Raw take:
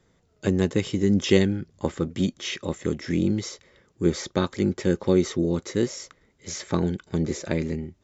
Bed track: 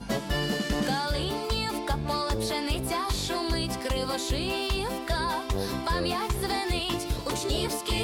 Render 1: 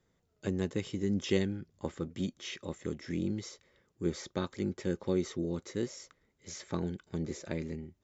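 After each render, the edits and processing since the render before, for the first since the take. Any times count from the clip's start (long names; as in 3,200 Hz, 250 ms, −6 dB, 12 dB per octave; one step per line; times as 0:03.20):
level −10.5 dB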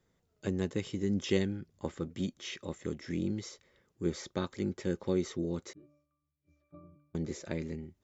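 0:05.73–0:07.15: resonances in every octave D, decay 0.58 s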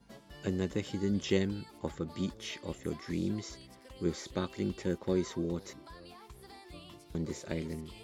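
mix in bed track −23.5 dB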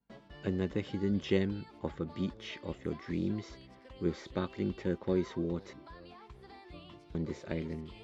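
noise gate with hold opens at −49 dBFS
low-pass filter 3,400 Hz 12 dB per octave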